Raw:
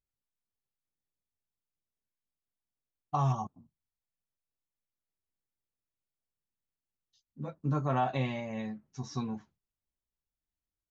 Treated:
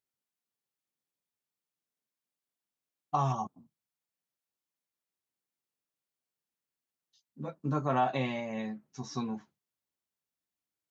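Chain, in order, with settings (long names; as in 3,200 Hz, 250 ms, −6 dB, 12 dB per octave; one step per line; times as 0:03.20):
high-pass filter 170 Hz 12 dB per octave
level +2 dB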